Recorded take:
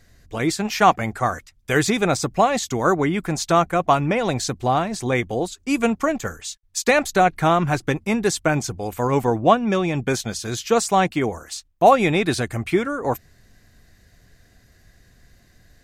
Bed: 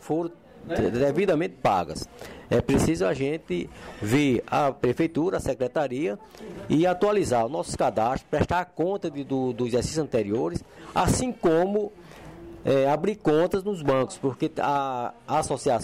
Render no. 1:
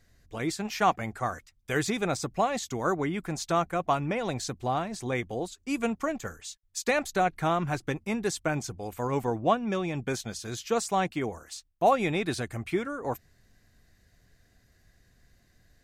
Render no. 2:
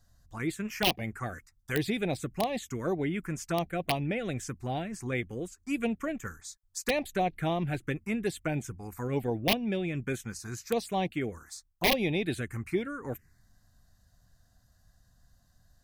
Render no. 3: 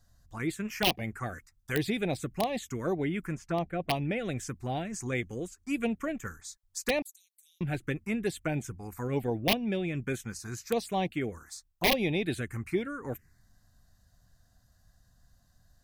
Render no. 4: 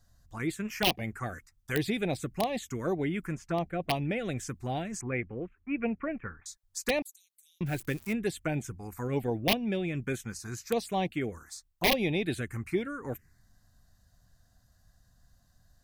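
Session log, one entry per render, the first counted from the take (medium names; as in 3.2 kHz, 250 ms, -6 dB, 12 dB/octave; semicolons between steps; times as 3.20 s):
trim -9 dB
integer overflow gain 15 dB; touch-sensitive phaser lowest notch 380 Hz, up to 1.4 kHz, full sweep at -23 dBFS
3.35–3.90 s: low-pass 1.8 kHz 6 dB/octave; 4.85–5.47 s: peaking EQ 6.7 kHz +9 dB 0.56 oct; 7.02–7.61 s: inverse Chebyshev high-pass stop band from 1.1 kHz, stop band 80 dB
5.01–6.46 s: elliptic low-pass 2.5 kHz, stop band 50 dB; 7.66–8.13 s: zero-crossing glitches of -35.5 dBFS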